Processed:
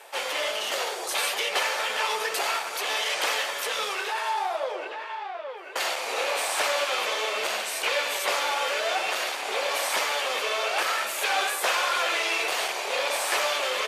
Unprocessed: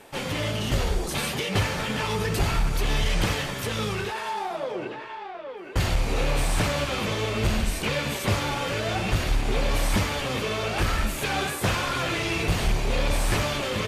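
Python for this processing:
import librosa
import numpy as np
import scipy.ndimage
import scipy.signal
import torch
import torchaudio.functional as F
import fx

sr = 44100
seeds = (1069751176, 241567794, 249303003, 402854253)

y = scipy.signal.sosfilt(scipy.signal.butter(4, 520.0, 'highpass', fs=sr, output='sos'), x)
y = y * librosa.db_to_amplitude(3.0)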